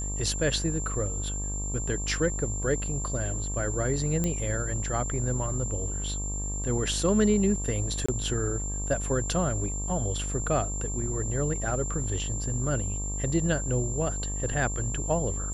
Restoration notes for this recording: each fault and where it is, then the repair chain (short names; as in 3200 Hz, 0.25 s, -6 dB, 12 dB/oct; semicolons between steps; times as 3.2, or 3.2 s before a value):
buzz 50 Hz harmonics 24 -33 dBFS
tone 7300 Hz -34 dBFS
4.24 pop -14 dBFS
8.06–8.09 gap 25 ms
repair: de-click; notch 7300 Hz, Q 30; de-hum 50 Hz, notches 24; interpolate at 8.06, 25 ms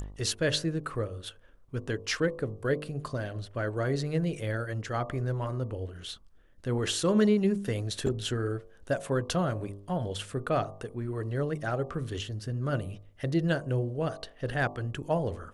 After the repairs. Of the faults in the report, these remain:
none